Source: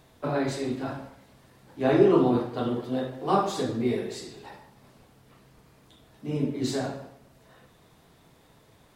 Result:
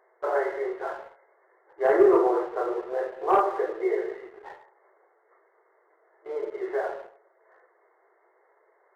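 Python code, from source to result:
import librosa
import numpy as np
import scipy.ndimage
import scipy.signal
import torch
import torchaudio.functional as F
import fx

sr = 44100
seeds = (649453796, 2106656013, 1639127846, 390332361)

y = fx.brickwall_bandpass(x, sr, low_hz=340.0, high_hz=2200.0)
y = fx.leveller(y, sr, passes=1)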